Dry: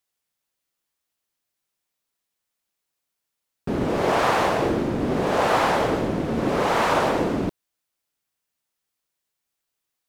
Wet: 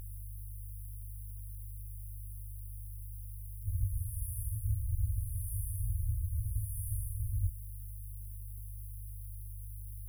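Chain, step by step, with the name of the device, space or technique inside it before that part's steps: video cassette with head-switching buzz (buzz 50 Hz, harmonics 34, -45 dBFS -4 dB/oct; white noise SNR 30 dB); FFT band-reject 110–9300 Hz; gain +4 dB

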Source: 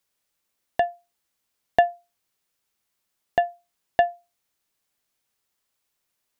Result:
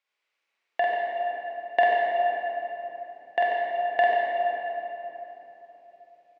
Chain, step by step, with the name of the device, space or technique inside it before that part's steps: station announcement (BPF 460–3600 Hz; bell 2300 Hz +8 dB 0.6 oct; loudspeakers at several distances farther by 16 m -2 dB, 48 m -11 dB; reverb RT60 3.6 s, pre-delay 19 ms, DRR -4 dB); gain -4.5 dB

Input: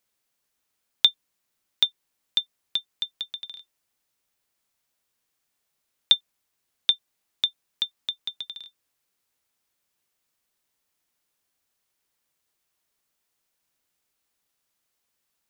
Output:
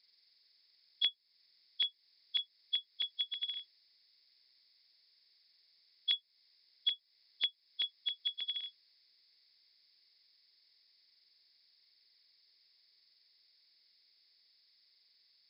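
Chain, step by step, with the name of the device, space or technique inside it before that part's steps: hearing aid with frequency lowering (nonlinear frequency compression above 3300 Hz 4:1; compressor 3:1, threshold -35 dBFS, peak gain reduction 14 dB; speaker cabinet 250–6200 Hz, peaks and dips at 270 Hz -10 dB, 550 Hz -9 dB, 870 Hz -10 dB, 1300 Hz -10 dB, 2100 Hz +9 dB, 4600 Hz +6 dB)

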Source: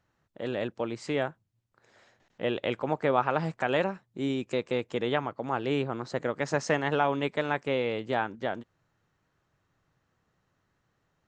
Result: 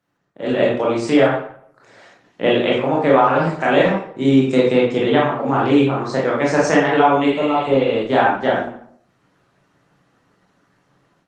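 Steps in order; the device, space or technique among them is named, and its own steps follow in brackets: HPF 78 Hz 12 dB/oct; reverb removal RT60 0.67 s; 4.28–5.67 bell 140 Hz +3.5 dB 2.6 oct; 7.28–7.89 spectral repair 1400–6400 Hz after; far-field microphone of a smart speaker (reverb RT60 0.65 s, pre-delay 19 ms, DRR -5 dB; HPF 110 Hz 24 dB/oct; AGC gain up to 12.5 dB; Opus 24 kbps 48000 Hz)

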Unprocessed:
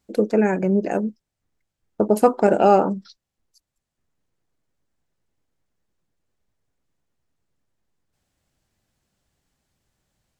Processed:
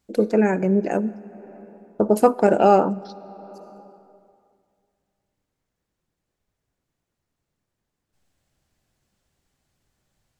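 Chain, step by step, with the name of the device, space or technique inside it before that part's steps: compressed reverb return (on a send at -6 dB: reverb RT60 2.2 s, pre-delay 52 ms + compressor 8:1, threshold -30 dBFS, peak gain reduction 18 dB)

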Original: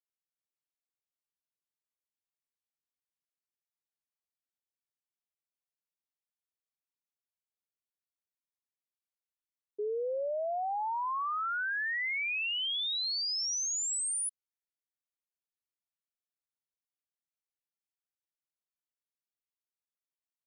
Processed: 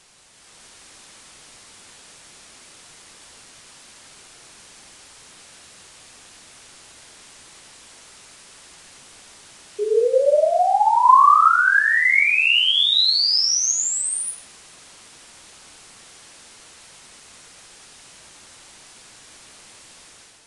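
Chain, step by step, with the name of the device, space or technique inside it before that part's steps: filmed off a television (BPF 290–6600 Hz; bell 1100 Hz +8.5 dB 0.3 oct; reverb RT60 0.65 s, pre-delay 25 ms, DRR -4 dB; white noise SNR 20 dB; AGC gain up to 7.5 dB; gain +3 dB; AAC 64 kbps 22050 Hz)

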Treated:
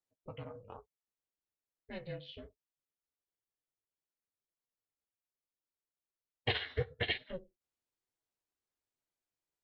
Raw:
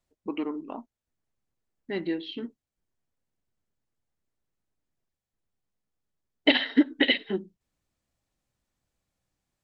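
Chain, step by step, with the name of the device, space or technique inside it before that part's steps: HPF 250 Hz 6 dB/oct; alien voice (ring modulator 180 Hz; flange 1.1 Hz, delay 5.7 ms, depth 8.5 ms, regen -28%); gain -5 dB

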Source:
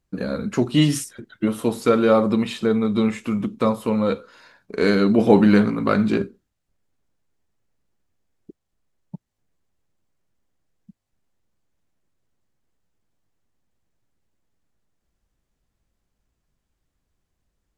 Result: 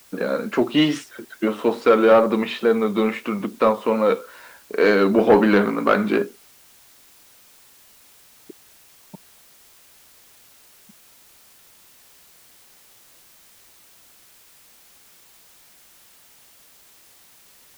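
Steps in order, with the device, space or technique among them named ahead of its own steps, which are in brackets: tape answering machine (BPF 370–2900 Hz; soft clip -12.5 dBFS, distortion -16 dB; wow and flutter; white noise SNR 28 dB); gain +6.5 dB

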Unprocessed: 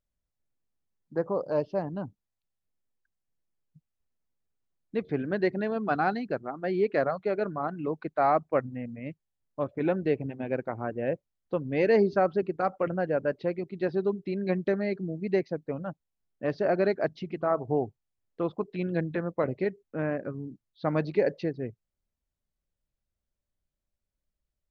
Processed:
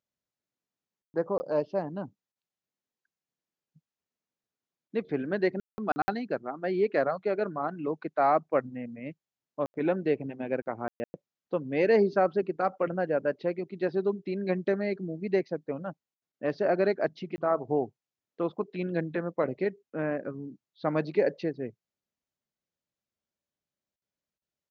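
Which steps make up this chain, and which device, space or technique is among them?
call with lost packets (HPF 170 Hz 12 dB/oct; downsampling 16000 Hz; packet loss packets of 20 ms bursts)

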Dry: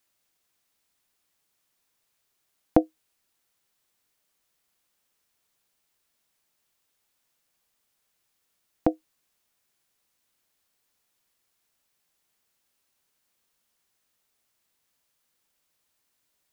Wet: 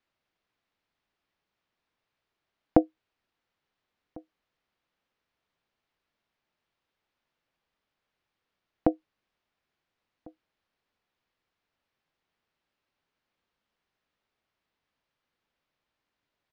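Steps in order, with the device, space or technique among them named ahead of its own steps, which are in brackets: shout across a valley (air absorption 250 m; outdoor echo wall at 240 m, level -25 dB)

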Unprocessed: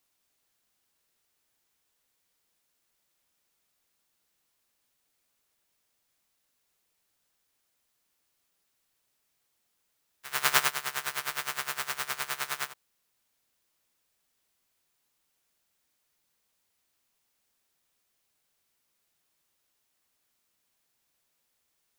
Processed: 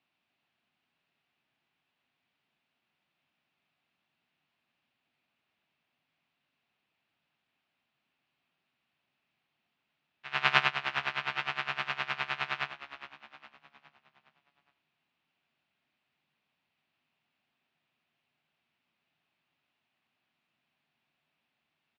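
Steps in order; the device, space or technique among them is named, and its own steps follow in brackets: frequency-shifting delay pedal into a guitar cabinet (frequency-shifting echo 0.412 s, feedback 47%, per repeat -65 Hz, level -13 dB; speaker cabinet 94–3600 Hz, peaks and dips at 150 Hz +8 dB, 240 Hz +6 dB, 480 Hz -7 dB, 720 Hz +4 dB, 2600 Hz +6 dB)

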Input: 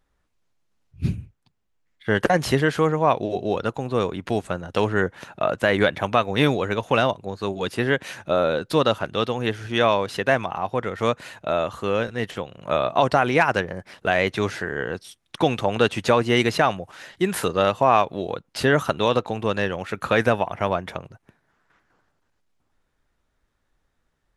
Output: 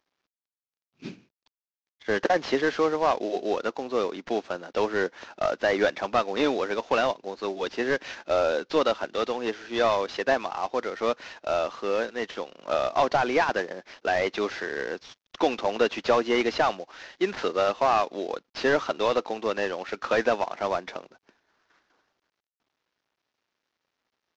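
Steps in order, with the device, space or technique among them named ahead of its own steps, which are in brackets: early wireless headset (HPF 260 Hz 24 dB/oct; CVSD 32 kbps); gain -2 dB

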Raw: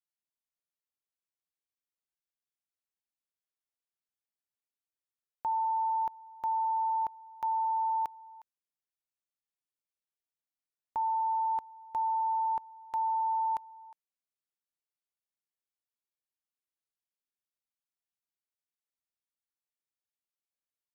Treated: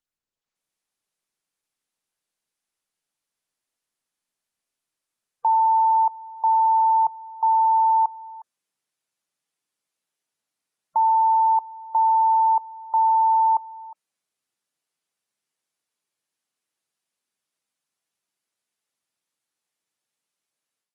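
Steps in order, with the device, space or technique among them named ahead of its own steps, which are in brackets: noise-suppressed video call (HPF 120 Hz 24 dB/oct; spectral gate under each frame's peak -25 dB strong; AGC gain up to 12 dB; Opus 24 kbps 48000 Hz)

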